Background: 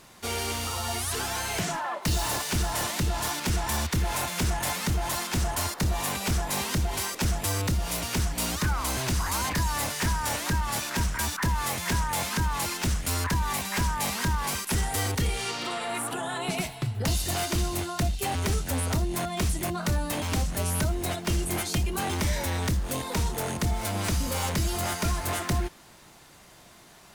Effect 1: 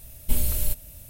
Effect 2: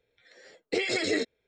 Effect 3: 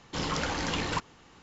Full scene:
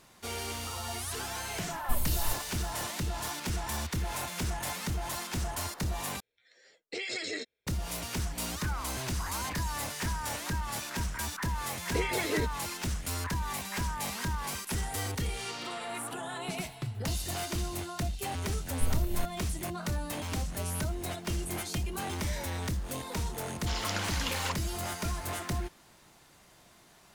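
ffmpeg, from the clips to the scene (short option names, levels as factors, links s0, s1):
-filter_complex "[1:a]asplit=2[s0][s1];[2:a]asplit=2[s2][s3];[0:a]volume=0.473[s4];[s2]tiltshelf=f=1300:g=-4.5[s5];[s3]lowpass=3600[s6];[s1]equalizer=f=10000:t=o:w=2.2:g=-15[s7];[3:a]highpass=f=1500:p=1[s8];[s4]asplit=2[s9][s10];[s9]atrim=end=6.204[s11];[s5]atrim=end=1.47,asetpts=PTS-STARTPTS,volume=0.376[s12];[s10]atrim=start=7.666[s13];[s0]atrim=end=1.09,asetpts=PTS-STARTPTS,volume=0.422,afade=t=in:d=0.004:c=hsin,afade=t=out:st=1.086:d=0.004:c=hsin,adelay=1600[s14];[s6]atrim=end=1.47,asetpts=PTS-STARTPTS,volume=0.631,afade=t=in:d=0.004:c=hsin,afade=t=out:st=1.466:d=0.004:c=hsin,adelay=494802S[s15];[s7]atrim=end=1.09,asetpts=PTS-STARTPTS,volume=0.447,afade=t=in:d=0.004:c=hsin,afade=t=out:st=1.086:d=0.004:c=hsin,adelay=18520[s16];[s8]atrim=end=1.42,asetpts=PTS-STARTPTS,afade=t=in:d=0.004:c=hsin,afade=t=out:st=1.416:d=0.004:c=hsin,adelay=23530[s17];[s11][s12]acrossfade=d=0.004:c1=hsin:c2=hsin[s18];[s18][s13]acrossfade=d=0.004:c1=hsin:c2=hsin[s19];[s19][s14][s15][s16][s17]amix=inputs=5:normalize=0"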